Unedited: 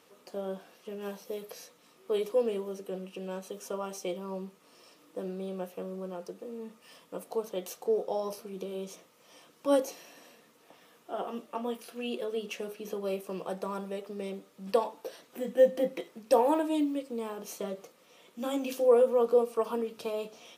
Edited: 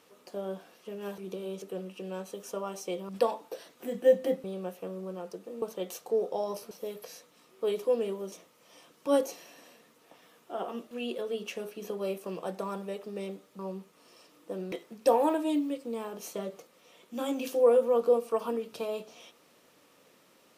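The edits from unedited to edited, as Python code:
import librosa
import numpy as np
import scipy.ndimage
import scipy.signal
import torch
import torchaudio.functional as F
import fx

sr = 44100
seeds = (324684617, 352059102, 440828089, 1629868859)

y = fx.edit(x, sr, fx.swap(start_s=1.18, length_s=1.61, other_s=8.47, other_length_s=0.44),
    fx.swap(start_s=4.26, length_s=1.13, other_s=14.62, other_length_s=1.35),
    fx.cut(start_s=6.57, length_s=0.81),
    fx.cut(start_s=11.5, length_s=0.44), tone=tone)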